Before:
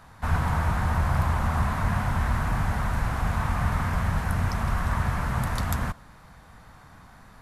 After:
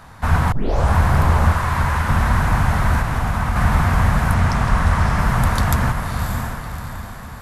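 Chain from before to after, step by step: 0.52 tape start 0.44 s; 1.52–2.09 elliptic high-pass 920 Hz; diffused feedback echo 0.609 s, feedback 45%, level -5 dB; 2.99–3.56 compressor 2.5:1, threshold -25 dBFS, peak gain reduction 4.5 dB; 4.34–5.19 LPF 9800 Hz 12 dB/oct; gain +8 dB

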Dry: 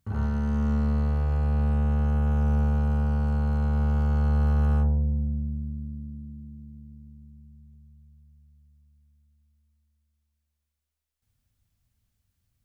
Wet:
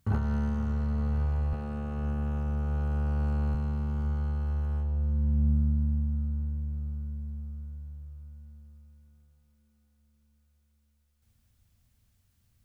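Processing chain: 1.53–3.55 HPF 65 Hz 24 dB/oct; negative-ratio compressor -29 dBFS, ratio -1; diffused feedback echo 0.519 s, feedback 67%, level -12 dB

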